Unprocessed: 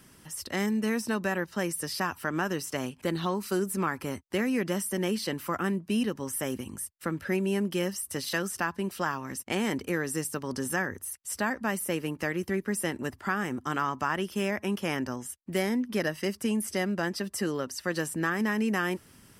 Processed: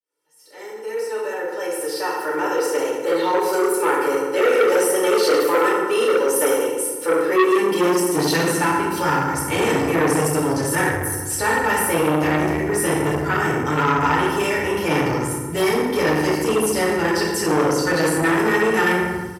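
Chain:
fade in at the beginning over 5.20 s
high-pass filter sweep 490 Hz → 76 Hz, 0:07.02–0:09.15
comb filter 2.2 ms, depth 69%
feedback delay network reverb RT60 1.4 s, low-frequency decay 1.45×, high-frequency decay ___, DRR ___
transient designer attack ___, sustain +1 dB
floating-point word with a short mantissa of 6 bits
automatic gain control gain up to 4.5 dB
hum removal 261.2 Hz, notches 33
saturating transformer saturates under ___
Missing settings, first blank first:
0.6×, −7.5 dB, −3 dB, 1,200 Hz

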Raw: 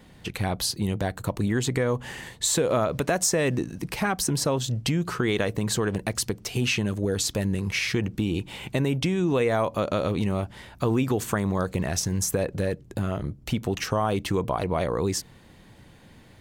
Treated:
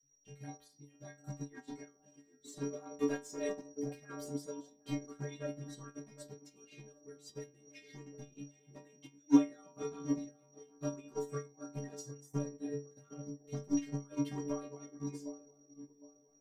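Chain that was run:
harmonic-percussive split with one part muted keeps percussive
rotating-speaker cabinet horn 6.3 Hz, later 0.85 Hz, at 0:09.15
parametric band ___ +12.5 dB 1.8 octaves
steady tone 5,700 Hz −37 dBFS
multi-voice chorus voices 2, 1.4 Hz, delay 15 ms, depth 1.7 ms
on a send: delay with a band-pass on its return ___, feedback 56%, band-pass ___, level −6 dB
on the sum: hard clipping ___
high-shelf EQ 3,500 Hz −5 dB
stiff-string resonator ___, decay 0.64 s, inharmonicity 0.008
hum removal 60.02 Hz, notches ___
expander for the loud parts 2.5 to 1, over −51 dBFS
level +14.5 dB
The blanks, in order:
210 Hz, 761 ms, 440 Hz, −21 dBFS, 140 Hz, 8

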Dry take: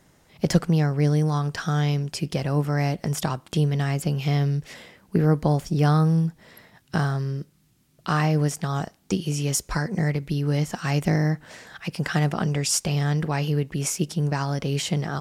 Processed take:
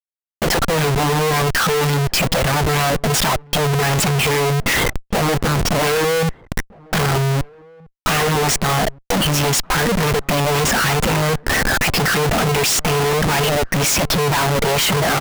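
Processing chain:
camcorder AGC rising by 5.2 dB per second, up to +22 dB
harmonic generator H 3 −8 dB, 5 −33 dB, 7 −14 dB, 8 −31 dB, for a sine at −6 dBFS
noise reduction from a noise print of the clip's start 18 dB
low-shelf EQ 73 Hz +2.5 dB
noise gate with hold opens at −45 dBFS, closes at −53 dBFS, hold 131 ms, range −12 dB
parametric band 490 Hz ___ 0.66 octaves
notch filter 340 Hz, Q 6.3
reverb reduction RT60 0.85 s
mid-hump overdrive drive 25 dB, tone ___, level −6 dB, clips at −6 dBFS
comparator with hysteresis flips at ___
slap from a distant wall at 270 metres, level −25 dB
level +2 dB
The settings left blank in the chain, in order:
+8.5 dB, 2,700 Hz, −25.5 dBFS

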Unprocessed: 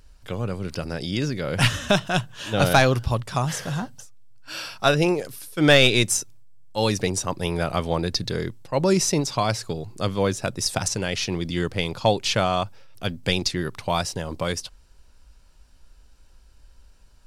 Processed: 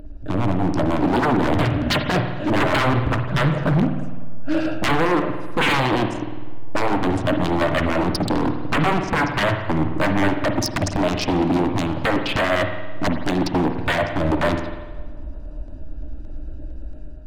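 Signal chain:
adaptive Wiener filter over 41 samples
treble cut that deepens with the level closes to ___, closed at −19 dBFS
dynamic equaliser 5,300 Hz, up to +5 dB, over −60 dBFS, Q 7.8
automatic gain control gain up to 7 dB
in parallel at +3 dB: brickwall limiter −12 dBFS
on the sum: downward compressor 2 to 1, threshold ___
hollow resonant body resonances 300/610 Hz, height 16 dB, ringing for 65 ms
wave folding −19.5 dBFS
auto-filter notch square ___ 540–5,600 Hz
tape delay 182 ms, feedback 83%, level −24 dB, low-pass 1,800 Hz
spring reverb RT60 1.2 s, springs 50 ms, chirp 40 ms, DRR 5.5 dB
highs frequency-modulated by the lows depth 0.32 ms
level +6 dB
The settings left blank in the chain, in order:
1,500 Hz, −32 dBFS, 8.8 Hz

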